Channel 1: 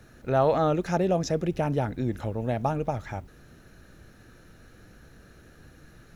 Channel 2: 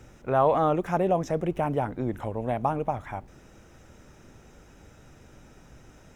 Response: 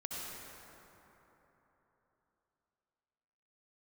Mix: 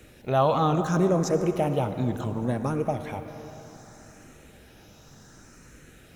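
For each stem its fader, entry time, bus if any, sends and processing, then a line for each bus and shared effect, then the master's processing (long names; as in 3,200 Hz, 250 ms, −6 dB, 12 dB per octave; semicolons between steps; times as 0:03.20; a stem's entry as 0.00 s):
−2.0 dB, 0.00 s, send −10 dB, high-pass filter 96 Hz; phaser whose notches keep moving one way falling 1.6 Hz
−3.5 dB, 0.00 s, send −6 dB, high-shelf EQ 2,000 Hz +11.5 dB; frequency shifter mixed with the dry sound +0.67 Hz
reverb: on, RT60 3.7 s, pre-delay 58 ms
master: no processing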